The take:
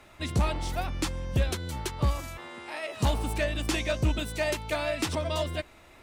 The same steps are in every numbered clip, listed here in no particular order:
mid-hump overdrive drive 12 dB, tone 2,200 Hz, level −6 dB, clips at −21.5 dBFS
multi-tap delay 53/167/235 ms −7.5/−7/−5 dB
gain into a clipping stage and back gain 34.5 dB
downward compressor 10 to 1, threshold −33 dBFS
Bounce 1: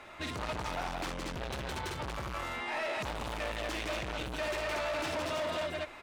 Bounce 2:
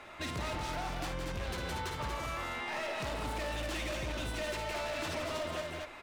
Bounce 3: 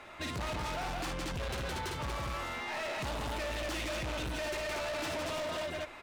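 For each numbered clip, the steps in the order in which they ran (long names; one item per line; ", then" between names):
multi-tap delay, then gain into a clipping stage and back, then downward compressor, then mid-hump overdrive
mid-hump overdrive, then gain into a clipping stage and back, then multi-tap delay, then downward compressor
multi-tap delay, then mid-hump overdrive, then gain into a clipping stage and back, then downward compressor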